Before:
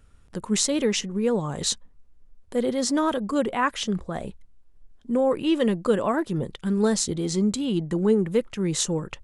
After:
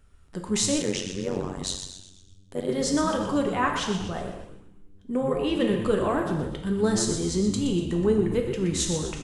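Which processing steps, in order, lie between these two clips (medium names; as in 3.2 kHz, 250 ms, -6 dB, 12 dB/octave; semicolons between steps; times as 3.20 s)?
frequency-shifting echo 122 ms, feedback 48%, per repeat -100 Hz, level -9.5 dB; gated-style reverb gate 320 ms falling, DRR 2.5 dB; 0.82–2.69 s: AM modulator 93 Hz, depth 95%; trim -3 dB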